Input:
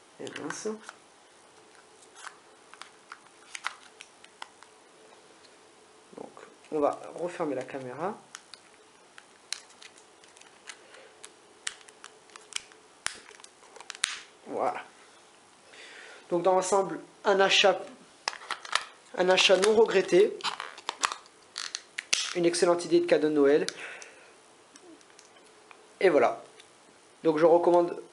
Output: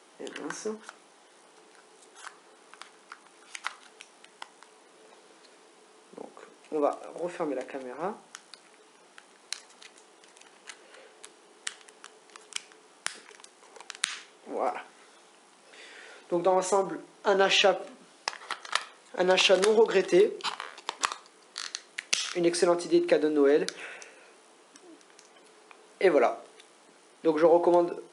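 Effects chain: elliptic high-pass 170 Hz

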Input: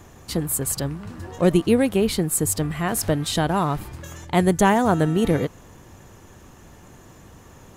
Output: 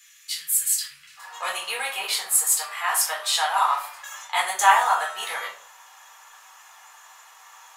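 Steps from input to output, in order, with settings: inverse Chebyshev high-pass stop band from 770 Hz, stop band 50 dB, from 1.16 s stop band from 340 Hz; shoebox room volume 390 m³, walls furnished, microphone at 4 m; gain -1 dB

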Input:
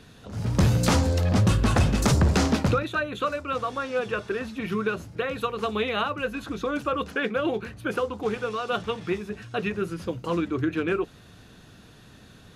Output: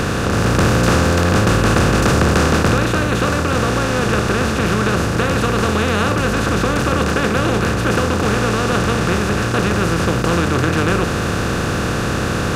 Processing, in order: per-bin compression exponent 0.2; gain -1 dB

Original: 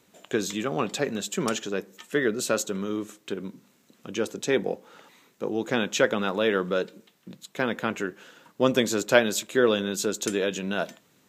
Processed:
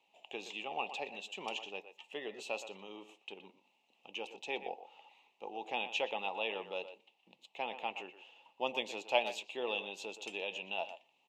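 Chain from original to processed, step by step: double band-pass 1500 Hz, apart 1.7 oct; speakerphone echo 0.12 s, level -11 dB; gain +1 dB

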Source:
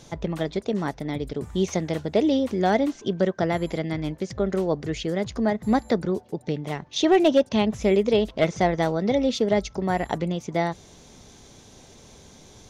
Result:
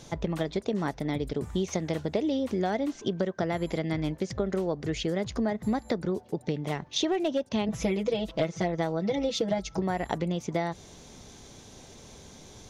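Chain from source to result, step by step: 7.68–9.82 comb 6.1 ms, depth 99%; compressor 12:1, threshold -24 dBFS, peak gain reduction 14.5 dB

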